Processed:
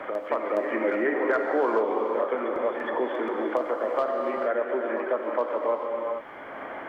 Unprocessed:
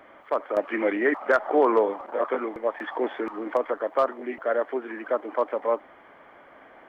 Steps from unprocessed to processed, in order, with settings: reverse echo 417 ms -10.5 dB; gated-style reverb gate 470 ms flat, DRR 2 dB; three bands compressed up and down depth 70%; trim -3.5 dB

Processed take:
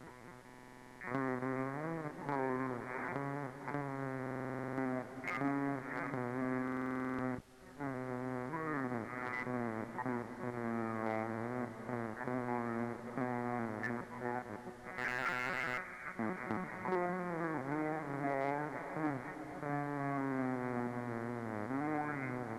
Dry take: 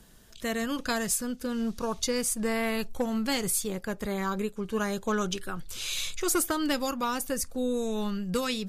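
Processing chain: square wave that keeps the level; peak limiter -27.5 dBFS, peak gain reduction 25.5 dB; granular stretch 1.5×, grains 28 ms; LPC vocoder at 8 kHz pitch kept; reverberation RT60 3.4 s, pre-delay 101 ms, DRR 11.5 dB; compression 6:1, threshold -34 dBFS, peak gain reduction 23 dB; high-pass 410 Hz 12 dB/octave; added noise pink -72 dBFS; speed mistake 78 rpm record played at 45 rpm; buffer glitch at 0.45/4.22/6.63 s, samples 2048, times 11; slew-rate limiter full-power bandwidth 18 Hz; trim +8 dB

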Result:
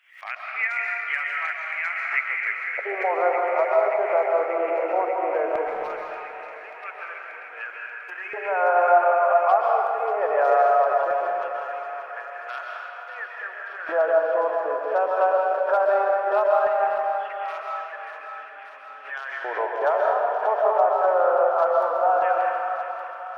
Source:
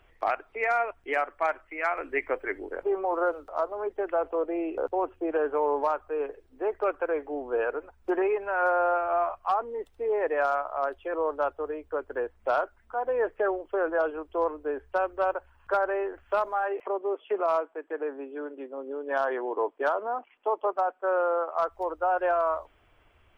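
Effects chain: de-hum 141.6 Hz, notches 3; LFO high-pass square 0.18 Hz 630–2000 Hz; on a send: thinning echo 585 ms, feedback 82%, high-pass 900 Hz, level -9 dB; on the sum: algorithmic reverb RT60 2.3 s, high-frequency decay 0.75×, pre-delay 95 ms, DRR -1.5 dB; swell ahead of each attack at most 120 dB/s; trim -1.5 dB

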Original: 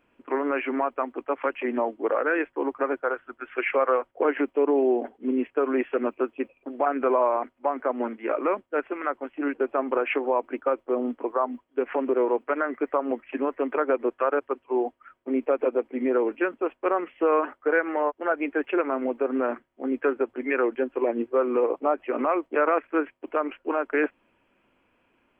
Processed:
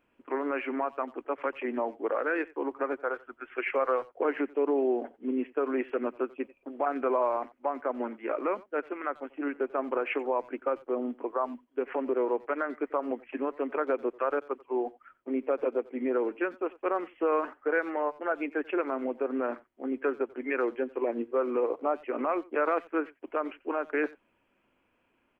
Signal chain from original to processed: speakerphone echo 90 ms, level -21 dB; trim -5 dB

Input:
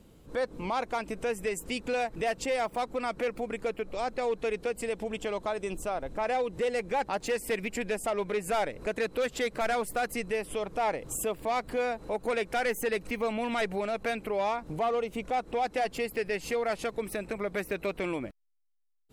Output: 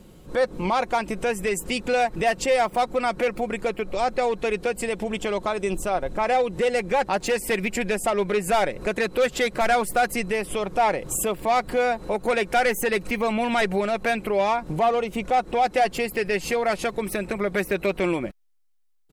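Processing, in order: comb 5.5 ms, depth 33%; trim +7.5 dB

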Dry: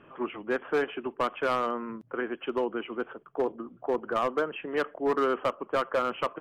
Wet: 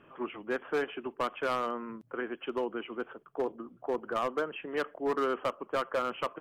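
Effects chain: treble shelf 4.3 kHz +5 dB; trim -4 dB

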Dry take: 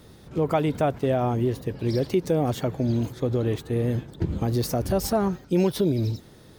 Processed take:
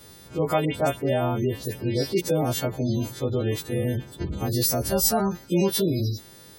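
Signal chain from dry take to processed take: partials quantised in pitch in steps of 2 st; 0.65–2.21 s: phase dispersion highs, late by 99 ms, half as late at 2.7 kHz; spectral gate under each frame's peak -30 dB strong

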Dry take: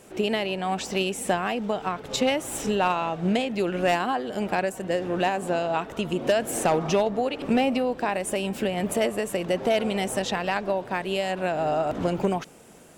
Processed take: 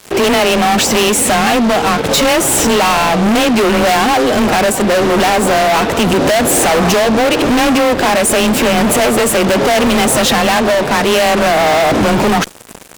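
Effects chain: frequency shift +21 Hz; fuzz box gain 38 dB, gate -46 dBFS; trim +3.5 dB

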